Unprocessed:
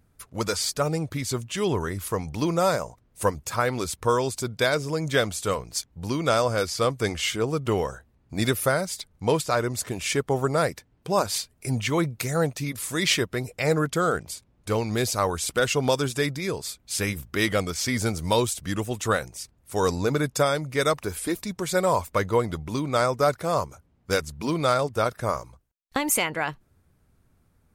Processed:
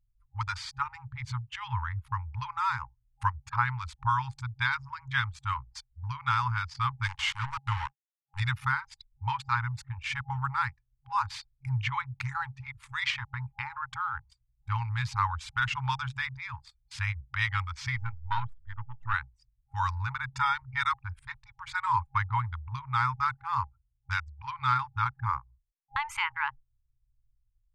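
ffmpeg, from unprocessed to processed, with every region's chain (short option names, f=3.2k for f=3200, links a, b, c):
-filter_complex "[0:a]asettb=1/sr,asplit=3[a][b][c];[a]atrim=end=7.034[d];[b]atrim=start=7.03:end=8.4,asetpts=PTS-STARTPTS,afade=t=in:d=0.004:c=qsin,afade=t=out:st=1.366:d=0.004:c=qsin,equalizer=f=11k:t=o:w=2:g=10,aeval=exprs='val(0)*gte(abs(val(0)),0.0501)':c=same[e];[c]atrim=start=8.396[f];[d][e]acrossfade=d=0.004:c1=hsin:c2=qsin[g];[g][f]acrossfade=d=0.004:c1=qsin:c2=hsin,asettb=1/sr,asplit=3[h][i][j];[h]atrim=end=13.104[k];[i]atrim=start=13.1:end=14.26,asetpts=PTS-STARTPTS,afade=t=in:d=0.004:c=qsin,afade=t=out:st=1.156:d=0.004:c=qsin,equalizer=f=790:t=o:w=0.95:g=11,acompressor=threshold=-24dB:ratio=4:attack=3.2:release=140:knee=1:detection=peak[l];[j]atrim=start=14.256[m];[k][l]acrossfade=d=0.004:c1=hsin:c2=qsin[n];[n][m]acrossfade=d=0.004:c1=qsin:c2=hsin,asettb=1/sr,asplit=3[o][p][q];[o]atrim=end=17.964[r];[p]atrim=start=17.96:end=19.14,asetpts=PTS-STARTPTS,afade=t=in:d=0.004:c=qsin,afade=t=out:st=1.176:d=0.004:c=qsin,aeval=exprs='if(lt(val(0),0),0.251*val(0),val(0))':c=same,highshelf=f=4.1k:g=-9.5[s];[q]atrim=start=19.136[t];[r][s]acrossfade=d=0.004:c1=hsin:c2=qsin[u];[u][t]acrossfade=d=0.004:c1=qsin:c2=hsin,asettb=1/sr,asplit=3[v][w][x];[v]atrim=end=20.324[y];[w]atrim=start=20.32:end=20.84,asetpts=PTS-STARTPTS,afade=t=in:d=0.004:c=qsin,afade=t=out:st=0.516:d=0.004:c=qsin,lowpass=11k,aecho=1:1:2.2:0.54,atrim=end_sample=22932[z];[x]atrim=start=20.836[aa];[y][z]acrossfade=d=0.004:c1=hsin:c2=qsin[ab];[ab][aa]acrossfade=d=0.004:c1=qsin:c2=hsin,anlmdn=39.8,afftfilt=real='re*(1-between(b*sr/4096,130,810))':imag='im*(1-between(b*sr/4096,130,810))':win_size=4096:overlap=0.75,lowpass=2.4k"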